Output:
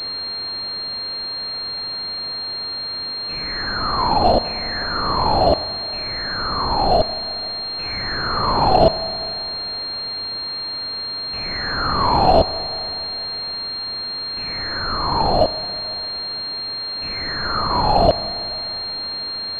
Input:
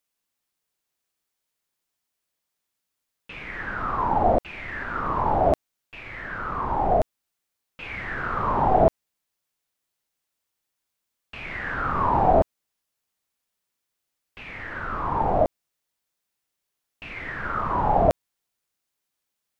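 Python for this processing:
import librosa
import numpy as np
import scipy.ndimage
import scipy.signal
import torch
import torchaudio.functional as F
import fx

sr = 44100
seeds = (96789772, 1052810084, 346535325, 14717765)

y = x + 0.5 * 10.0 ** (-33.0 / 20.0) * np.sign(x)
y = fx.rev_schroeder(y, sr, rt60_s=3.1, comb_ms=27, drr_db=13.0)
y = fx.pwm(y, sr, carrier_hz=4200.0)
y = y * librosa.db_to_amplitude(4.0)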